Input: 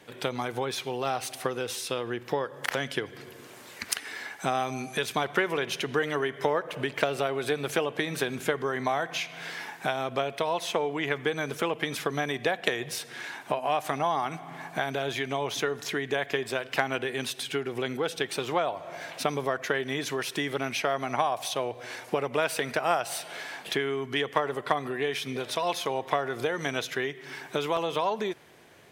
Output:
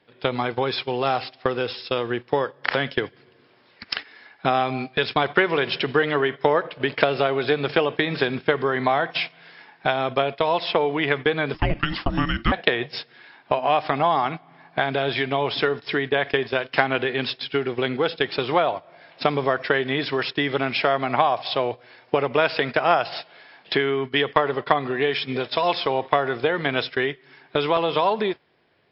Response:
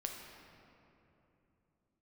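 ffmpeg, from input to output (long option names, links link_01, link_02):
-filter_complex "[0:a]agate=range=-16dB:threshold=-34dB:ratio=16:detection=peak,asettb=1/sr,asplit=3[link_01][link_02][link_03];[link_01]atrim=end=11.544[link_04];[link_02]atrim=start=11.54:end=12.52,asetpts=PTS-STARTPTS,afade=type=in:duration=0.004:curve=qsin,afade=type=out:start_time=0.976:duration=0.004:curve=qsin,afreqshift=-460[link_05];[link_03]atrim=start=12.516[link_06];[link_04][link_05]acrossfade=duration=0.004:curve1=hsin:curve2=qsin[link_07];[link_07][link_06]acrossfade=duration=0.004:curve1=qsin:curve2=hsin,volume=7.5dB" -ar 12000 -c:a libmp3lame -b:a 40k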